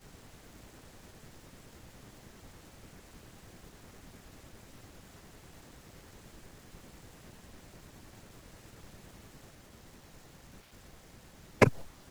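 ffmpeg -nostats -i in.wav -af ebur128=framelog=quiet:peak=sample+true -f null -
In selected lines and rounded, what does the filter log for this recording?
Integrated loudness:
  I:         -27.3 LUFS
  Threshold: -51.7 LUFS
Loudness range:
  LRA:         0.6 LU
  Threshold: -67.5 LUFS
  LRA low:   -54.2 LUFS
  LRA high:  -53.6 LUFS
Sample peak:
  Peak:       -5.9 dBFS
True peak:
  Peak:       -5.9 dBFS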